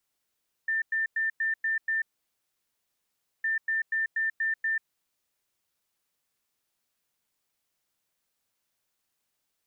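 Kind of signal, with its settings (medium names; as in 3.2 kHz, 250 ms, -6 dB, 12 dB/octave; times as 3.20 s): beep pattern sine 1.79 kHz, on 0.14 s, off 0.10 s, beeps 6, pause 1.42 s, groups 2, -24.5 dBFS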